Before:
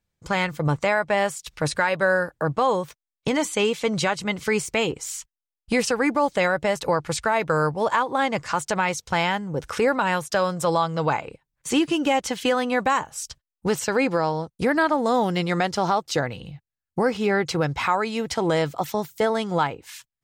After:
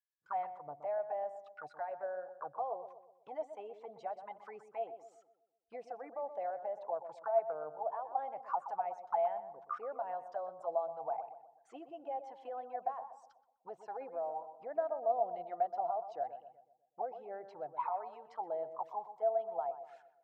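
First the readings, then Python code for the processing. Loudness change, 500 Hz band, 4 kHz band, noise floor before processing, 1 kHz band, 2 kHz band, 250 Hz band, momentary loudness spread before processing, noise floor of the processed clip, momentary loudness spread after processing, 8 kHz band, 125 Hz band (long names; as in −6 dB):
−16.0 dB, −14.5 dB, below −40 dB, below −85 dBFS, −13.0 dB, −32.0 dB, −34.5 dB, 7 LU, −74 dBFS, 15 LU, below −40 dB, below −40 dB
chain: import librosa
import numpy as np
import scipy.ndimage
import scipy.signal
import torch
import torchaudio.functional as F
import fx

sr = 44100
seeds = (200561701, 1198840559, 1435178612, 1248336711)

y = fx.envelope_sharpen(x, sr, power=1.5)
y = fx.auto_wah(y, sr, base_hz=690.0, top_hz=1700.0, q=21.0, full_db=-18.5, direction='down')
y = fx.echo_filtered(y, sr, ms=124, feedback_pct=49, hz=1200.0, wet_db=-9.5)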